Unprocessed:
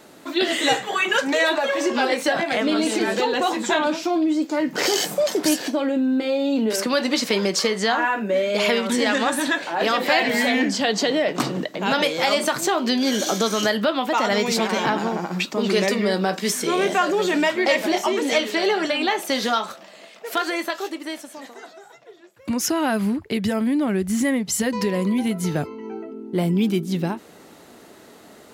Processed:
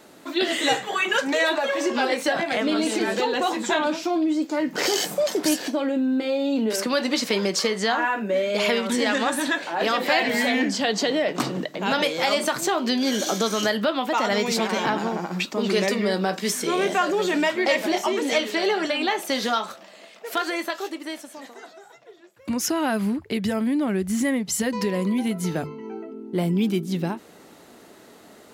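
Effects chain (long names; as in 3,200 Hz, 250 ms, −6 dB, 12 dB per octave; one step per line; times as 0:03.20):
mains-hum notches 50/100/150 Hz
level −2 dB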